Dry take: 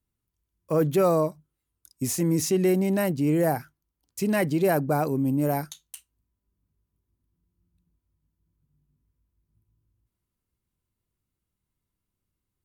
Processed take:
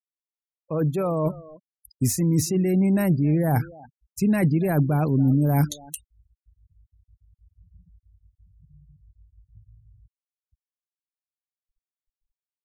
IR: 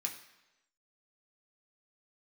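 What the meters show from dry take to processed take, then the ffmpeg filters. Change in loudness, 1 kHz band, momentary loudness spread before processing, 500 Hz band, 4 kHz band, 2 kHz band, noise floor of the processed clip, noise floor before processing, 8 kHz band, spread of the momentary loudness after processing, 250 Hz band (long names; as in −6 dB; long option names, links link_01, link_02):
+2.0 dB, −2.0 dB, 10 LU, −3.0 dB, −1.0 dB, −1.5 dB, below −85 dBFS, −84 dBFS, +1.0 dB, 15 LU, +3.0 dB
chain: -filter_complex "[0:a]areverse,acompressor=threshold=-29dB:ratio=12,areverse,bandreject=frequency=3000:width=9.9,asplit=2[link_01][link_02];[link_02]adelay=280,highpass=300,lowpass=3400,asoftclip=type=hard:threshold=-30.5dB,volume=-16dB[link_03];[link_01][link_03]amix=inputs=2:normalize=0,asubboost=boost=4:cutoff=230,afftfilt=real='re*gte(hypot(re,im),0.00562)':imag='im*gte(hypot(re,im),0.00562)':win_size=1024:overlap=0.75,volume=8dB"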